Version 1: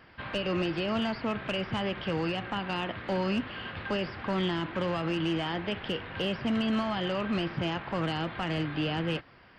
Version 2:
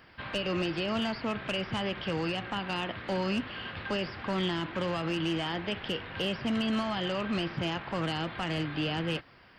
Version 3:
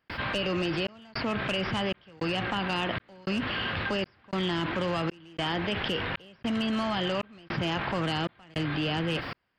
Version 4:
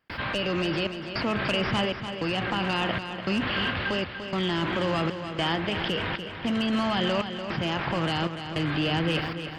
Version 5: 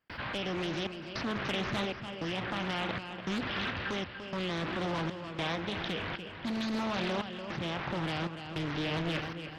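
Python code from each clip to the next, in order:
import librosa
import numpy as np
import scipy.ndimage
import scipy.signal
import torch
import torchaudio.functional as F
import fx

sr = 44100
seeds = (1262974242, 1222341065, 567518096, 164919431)

y1 = fx.high_shelf(x, sr, hz=4600.0, db=8.5)
y1 = y1 * librosa.db_to_amplitude(-1.5)
y2 = fx.step_gate(y1, sr, bpm=156, pattern='.xxxxxxxx..', floor_db=-60.0, edge_ms=4.5)
y2 = fx.env_flatten(y2, sr, amount_pct=70)
y3 = fx.tremolo_shape(y2, sr, shape='saw_up', hz=0.54, depth_pct=30)
y3 = fx.echo_feedback(y3, sr, ms=293, feedback_pct=46, wet_db=-9.0)
y3 = y3 * librosa.db_to_amplitude(3.5)
y4 = fx.doppler_dist(y3, sr, depth_ms=0.79)
y4 = y4 * librosa.db_to_amplitude(-7.0)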